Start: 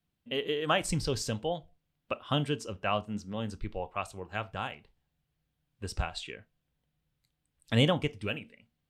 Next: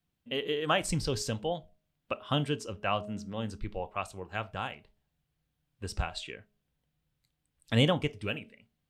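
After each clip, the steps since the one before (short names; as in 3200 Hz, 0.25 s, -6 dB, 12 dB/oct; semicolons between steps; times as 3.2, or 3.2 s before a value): de-hum 208.3 Hz, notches 3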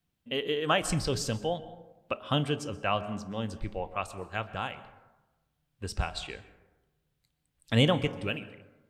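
plate-style reverb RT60 1.1 s, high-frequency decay 0.4×, pre-delay 0.11 s, DRR 15 dB; gain +1.5 dB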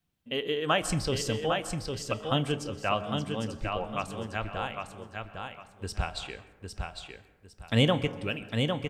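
feedback echo 0.805 s, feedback 26%, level -5 dB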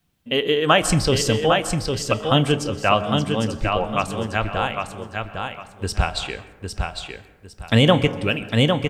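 maximiser +11.5 dB; gain -1 dB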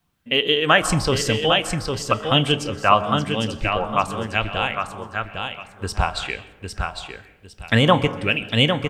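LFO bell 1 Hz 960–3200 Hz +9 dB; gain -2 dB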